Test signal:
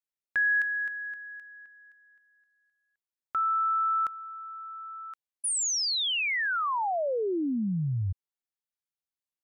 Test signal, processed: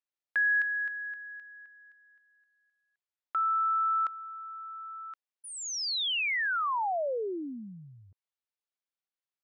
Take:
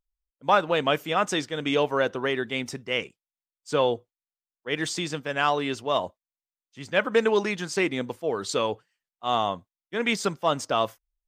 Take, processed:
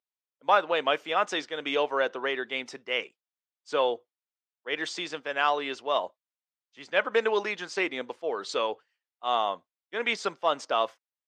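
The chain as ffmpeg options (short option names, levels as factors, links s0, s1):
-af "highpass=430,lowpass=4800,volume=0.891"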